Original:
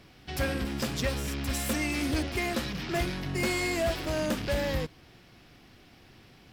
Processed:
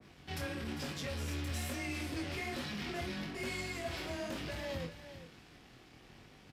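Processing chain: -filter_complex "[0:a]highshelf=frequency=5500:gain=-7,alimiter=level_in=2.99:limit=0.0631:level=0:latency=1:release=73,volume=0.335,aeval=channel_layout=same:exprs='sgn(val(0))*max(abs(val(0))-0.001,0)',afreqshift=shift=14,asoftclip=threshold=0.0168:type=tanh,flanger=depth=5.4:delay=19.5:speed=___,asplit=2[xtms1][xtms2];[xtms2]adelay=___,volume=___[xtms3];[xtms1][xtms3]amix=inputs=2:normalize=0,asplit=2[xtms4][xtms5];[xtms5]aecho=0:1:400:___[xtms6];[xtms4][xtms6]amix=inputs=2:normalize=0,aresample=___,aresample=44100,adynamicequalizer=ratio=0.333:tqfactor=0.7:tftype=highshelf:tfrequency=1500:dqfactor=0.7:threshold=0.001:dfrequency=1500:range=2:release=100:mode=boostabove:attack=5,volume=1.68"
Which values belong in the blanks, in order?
1.1, 49, 0.251, 0.251, 32000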